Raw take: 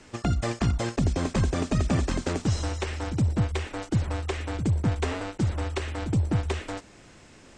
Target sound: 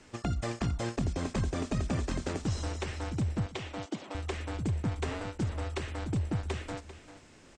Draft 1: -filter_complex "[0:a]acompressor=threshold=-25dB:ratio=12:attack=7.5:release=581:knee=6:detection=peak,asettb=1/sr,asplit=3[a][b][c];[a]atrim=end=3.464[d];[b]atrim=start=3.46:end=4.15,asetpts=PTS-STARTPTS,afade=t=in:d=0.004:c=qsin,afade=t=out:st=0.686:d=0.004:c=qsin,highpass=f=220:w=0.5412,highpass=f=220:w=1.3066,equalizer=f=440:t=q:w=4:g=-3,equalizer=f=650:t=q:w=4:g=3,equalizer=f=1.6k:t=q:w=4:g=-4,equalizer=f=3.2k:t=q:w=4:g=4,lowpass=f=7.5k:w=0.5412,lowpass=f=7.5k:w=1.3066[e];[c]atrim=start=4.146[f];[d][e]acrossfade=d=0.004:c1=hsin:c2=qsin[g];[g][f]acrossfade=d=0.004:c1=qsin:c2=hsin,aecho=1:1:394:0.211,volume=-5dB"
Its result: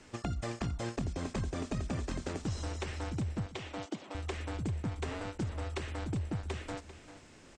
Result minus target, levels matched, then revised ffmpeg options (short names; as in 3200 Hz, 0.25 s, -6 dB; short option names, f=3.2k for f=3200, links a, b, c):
compressor: peak gain reduction +5 dB
-filter_complex "[0:a]acompressor=threshold=-18.5dB:ratio=12:attack=7.5:release=581:knee=6:detection=peak,asettb=1/sr,asplit=3[a][b][c];[a]atrim=end=3.464[d];[b]atrim=start=3.46:end=4.15,asetpts=PTS-STARTPTS,afade=t=in:d=0.004:c=qsin,afade=t=out:st=0.686:d=0.004:c=qsin,highpass=f=220:w=0.5412,highpass=f=220:w=1.3066,equalizer=f=440:t=q:w=4:g=-3,equalizer=f=650:t=q:w=4:g=3,equalizer=f=1.6k:t=q:w=4:g=-4,equalizer=f=3.2k:t=q:w=4:g=4,lowpass=f=7.5k:w=0.5412,lowpass=f=7.5k:w=1.3066[e];[c]atrim=start=4.146[f];[d][e]acrossfade=d=0.004:c1=hsin:c2=qsin[g];[g][f]acrossfade=d=0.004:c1=qsin:c2=hsin,aecho=1:1:394:0.211,volume=-5dB"